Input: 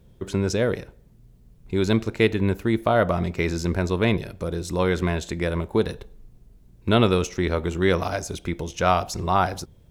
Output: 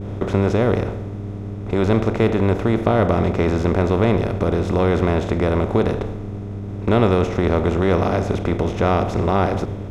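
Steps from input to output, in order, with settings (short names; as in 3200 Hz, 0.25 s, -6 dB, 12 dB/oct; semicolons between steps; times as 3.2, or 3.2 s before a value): per-bin compression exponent 0.4; tone controls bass -4 dB, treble -2 dB; expander -27 dBFS; buzz 100 Hz, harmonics 4, -34 dBFS; tilt -3 dB/oct; gain -4.5 dB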